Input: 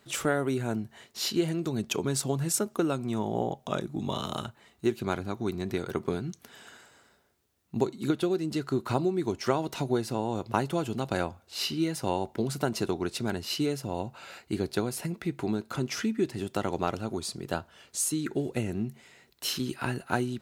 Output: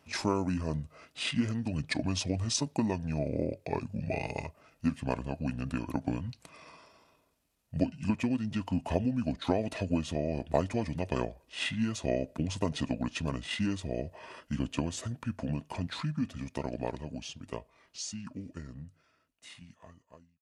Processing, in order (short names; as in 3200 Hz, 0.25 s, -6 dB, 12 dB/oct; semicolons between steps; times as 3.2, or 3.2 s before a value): ending faded out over 5.59 s; pitch shift -6.5 st; small resonant body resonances 630/2500 Hz, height 7 dB, ringing for 30 ms; gain -2.5 dB